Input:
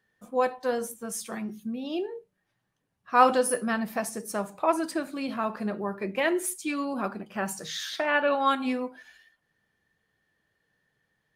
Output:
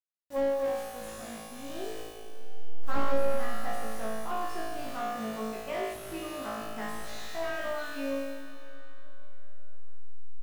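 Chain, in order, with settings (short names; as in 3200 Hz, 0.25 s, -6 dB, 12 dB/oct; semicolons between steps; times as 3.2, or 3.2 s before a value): level-crossing sampler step -35 dBFS; high shelf 2600 Hz -10 dB; de-hum 88.56 Hz, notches 5; vocal rider within 3 dB 0.5 s; pre-emphasis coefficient 0.8; doubler 18 ms -8 dB; flutter echo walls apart 3.4 m, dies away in 1.4 s; on a send at -10 dB: reverb RT60 4.4 s, pre-delay 0.115 s; on the sum: speed mistake 44.1 kHz file played as 48 kHz; slew limiter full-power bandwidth 31 Hz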